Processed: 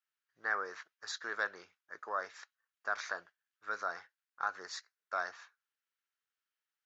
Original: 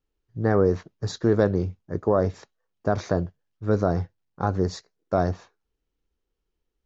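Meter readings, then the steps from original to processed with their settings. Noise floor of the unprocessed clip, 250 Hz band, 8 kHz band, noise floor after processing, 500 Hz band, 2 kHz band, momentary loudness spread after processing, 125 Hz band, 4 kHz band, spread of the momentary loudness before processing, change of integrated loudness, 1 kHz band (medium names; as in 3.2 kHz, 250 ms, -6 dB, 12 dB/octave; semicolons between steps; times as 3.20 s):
-80 dBFS, -34.5 dB, no reading, under -85 dBFS, -23.0 dB, +2.0 dB, 13 LU, under -40 dB, -4.5 dB, 13 LU, -14.0 dB, -8.0 dB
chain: resonant high-pass 1.5 kHz, resonance Q 2.4; trim -5.5 dB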